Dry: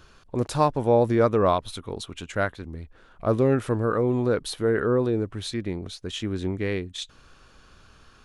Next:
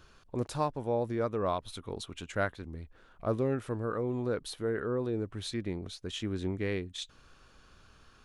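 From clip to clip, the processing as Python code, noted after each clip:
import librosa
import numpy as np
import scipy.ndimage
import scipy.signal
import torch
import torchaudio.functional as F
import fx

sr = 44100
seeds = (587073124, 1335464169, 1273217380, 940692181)

y = fx.rider(x, sr, range_db=3, speed_s=0.5)
y = F.gain(torch.from_numpy(y), -8.5).numpy()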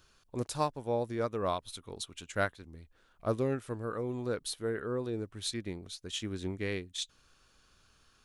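y = fx.high_shelf(x, sr, hz=3400.0, db=11.0)
y = fx.upward_expand(y, sr, threshold_db=-43.0, expansion=1.5)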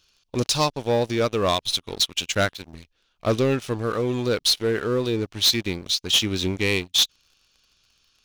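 y = fx.band_shelf(x, sr, hz=3900.0, db=11.5, octaves=1.7)
y = fx.leveller(y, sr, passes=3)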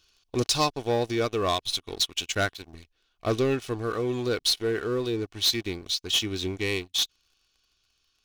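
y = x + 0.36 * np.pad(x, (int(2.7 * sr / 1000.0), 0))[:len(x)]
y = fx.rider(y, sr, range_db=5, speed_s=2.0)
y = F.gain(torch.from_numpy(y), -5.0).numpy()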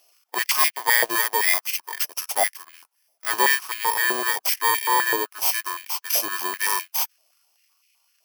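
y = fx.bit_reversed(x, sr, seeds[0], block=32)
y = fx.hpss(y, sr, part='harmonic', gain_db=8)
y = fx.filter_held_highpass(y, sr, hz=7.8, low_hz=640.0, high_hz=2300.0)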